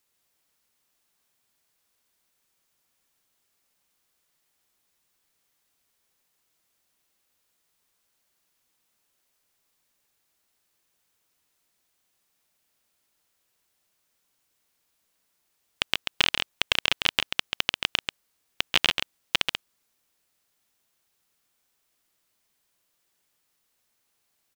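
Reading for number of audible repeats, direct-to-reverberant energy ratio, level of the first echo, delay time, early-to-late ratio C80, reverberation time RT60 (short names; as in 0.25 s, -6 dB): 1, none, -5.5 dB, 0.137 s, none, none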